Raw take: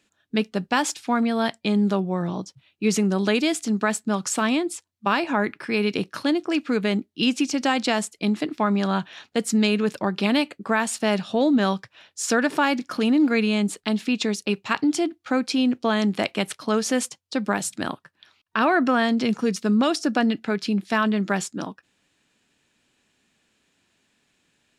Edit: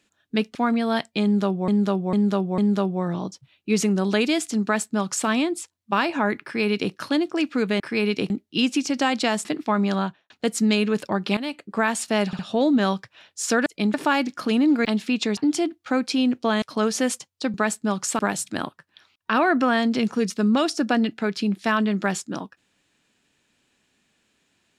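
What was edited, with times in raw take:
0.55–1.04 cut
1.72–2.17 loop, 4 plays
3.77–4.42 copy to 17.45
5.57–6.07 copy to 6.94
8.09–8.37 move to 12.46
8.87–9.22 studio fade out
10.29–10.68 fade in, from -14.5 dB
11.19 stutter 0.06 s, 3 plays
13.37–13.84 cut
14.36–14.77 cut
16.02–16.53 cut

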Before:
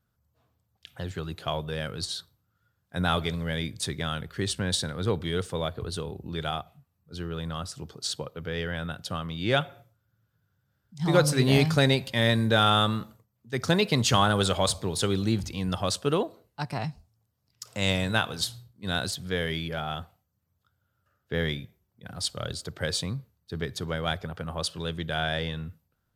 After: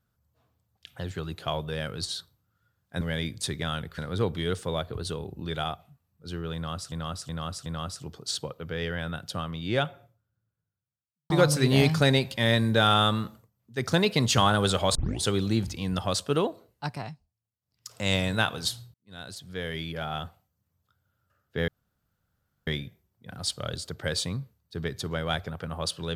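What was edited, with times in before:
3.01–3.4 cut
4.37–4.85 cut
7.42–7.79 loop, 4 plays
9.04–11.06 studio fade out
14.71 tape start 0.28 s
16.63–17.68 dip -18 dB, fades 0.32 s
18.7–19.93 fade in
21.44 insert room tone 0.99 s

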